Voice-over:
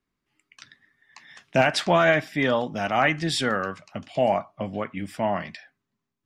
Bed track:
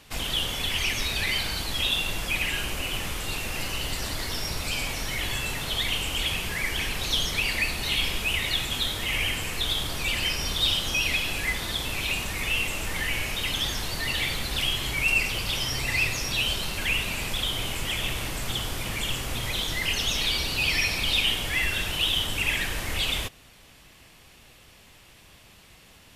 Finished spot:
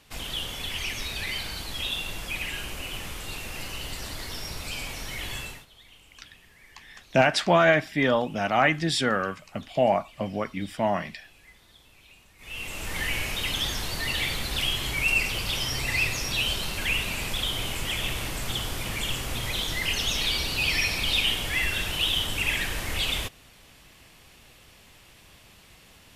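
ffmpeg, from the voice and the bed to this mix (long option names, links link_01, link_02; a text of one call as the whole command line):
ffmpeg -i stem1.wav -i stem2.wav -filter_complex "[0:a]adelay=5600,volume=0dB[link_01];[1:a]volume=20.5dB,afade=type=out:start_time=5.39:duration=0.27:silence=0.0891251,afade=type=in:start_time=12.38:duration=0.65:silence=0.0530884[link_02];[link_01][link_02]amix=inputs=2:normalize=0" out.wav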